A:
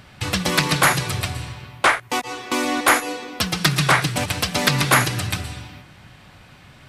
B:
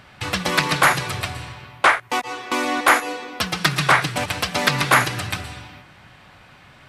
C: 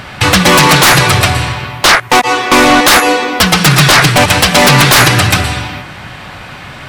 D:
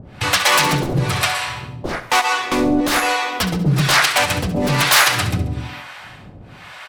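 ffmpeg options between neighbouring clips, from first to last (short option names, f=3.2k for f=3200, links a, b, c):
-af "equalizer=f=1.2k:w=0.34:g=7,volume=-5dB"
-af "apsyclip=10.5dB,aeval=exprs='1.06*sin(PI/2*2.24*val(0)/1.06)':c=same,volume=-2dB"
-filter_complex "[0:a]acrossover=split=550[a][b];[a]aeval=exprs='val(0)*(1-1/2+1/2*cos(2*PI*1.1*n/s))':c=same[c];[b]aeval=exprs='val(0)*(1-1/2-1/2*cos(2*PI*1.1*n/s))':c=same[d];[c][d]amix=inputs=2:normalize=0,asplit=2[e][f];[f]aecho=0:1:68|136|204|272|340:0.237|0.109|0.0502|0.0231|0.0106[g];[e][g]amix=inputs=2:normalize=0,volume=-5.5dB"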